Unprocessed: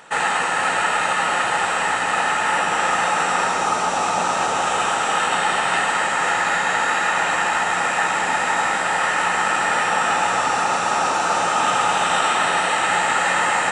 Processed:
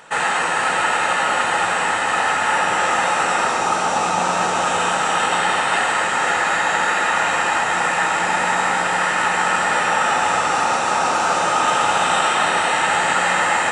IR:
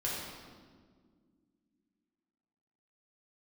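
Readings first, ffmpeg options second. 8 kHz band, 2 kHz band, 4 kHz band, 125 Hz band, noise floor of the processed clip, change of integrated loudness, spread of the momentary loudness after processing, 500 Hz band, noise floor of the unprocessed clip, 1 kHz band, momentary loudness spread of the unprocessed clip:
+1.0 dB, +1.5 dB, +1.0 dB, +2.5 dB, -20 dBFS, +1.0 dB, 2 LU, +2.0 dB, -22 dBFS, +1.0 dB, 2 LU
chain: -filter_complex "[0:a]asplit=2[a][b];[1:a]atrim=start_sample=2205[c];[b][c]afir=irnorm=-1:irlink=0,volume=-8.5dB[d];[a][d]amix=inputs=2:normalize=0,volume=-1.5dB"

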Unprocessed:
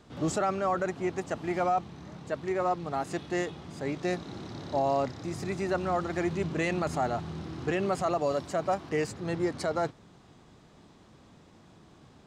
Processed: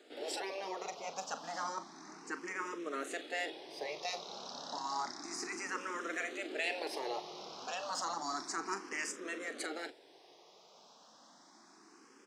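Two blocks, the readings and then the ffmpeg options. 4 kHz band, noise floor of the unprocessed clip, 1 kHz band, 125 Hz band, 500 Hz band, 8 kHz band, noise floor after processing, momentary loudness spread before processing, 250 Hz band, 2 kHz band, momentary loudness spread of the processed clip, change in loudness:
+2.0 dB, -57 dBFS, -8.5 dB, -29.5 dB, -13.0 dB, +1.0 dB, -62 dBFS, 8 LU, -14.5 dB, -2.0 dB, 13 LU, -9.0 dB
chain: -filter_complex "[0:a]afftfilt=real='re*lt(hypot(re,im),0.141)':imag='im*lt(hypot(re,im),0.141)':win_size=1024:overlap=0.75,highpass=f=310:w=0.5412,highpass=f=310:w=1.3066,equalizer=f=5.5k:t=o:w=0.55:g=9,asplit=2[a][b];[b]adelay=41,volume=-12dB[c];[a][c]amix=inputs=2:normalize=0,asplit=2[d][e];[e]afreqshift=0.31[f];[d][f]amix=inputs=2:normalize=1,volume=1dB"

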